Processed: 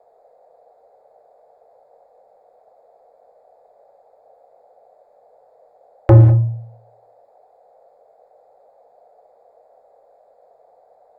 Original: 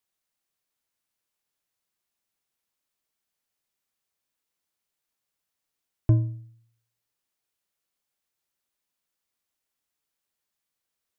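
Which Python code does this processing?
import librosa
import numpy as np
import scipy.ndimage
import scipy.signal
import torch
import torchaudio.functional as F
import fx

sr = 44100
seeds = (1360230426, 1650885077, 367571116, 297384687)

y = fx.wiener(x, sr, points=15)
y = fx.peak_eq(y, sr, hz=1000.0, db=7.5, octaves=1.0)
y = fx.dmg_noise_band(y, sr, seeds[0], low_hz=460.0, high_hz=790.0, level_db=-71.0)
y = fx.fold_sine(y, sr, drive_db=8, ceiling_db=-10.0)
y = fx.rev_gated(y, sr, seeds[1], gate_ms=230, shape='flat', drr_db=7.0)
y = y * 10.0 ** (5.5 / 20.0)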